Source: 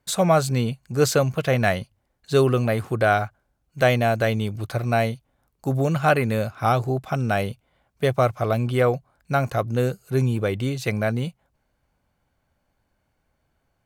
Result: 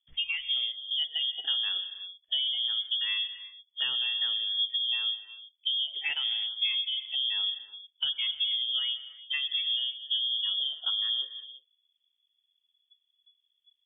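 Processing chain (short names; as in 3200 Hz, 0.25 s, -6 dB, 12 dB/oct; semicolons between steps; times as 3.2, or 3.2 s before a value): spectral noise reduction 23 dB; tilt -4 dB/oct; compressor 6:1, threshold -30 dBFS, peak gain reduction 20 dB; non-linear reverb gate 0.37 s flat, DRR 11 dB; inverted band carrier 3400 Hz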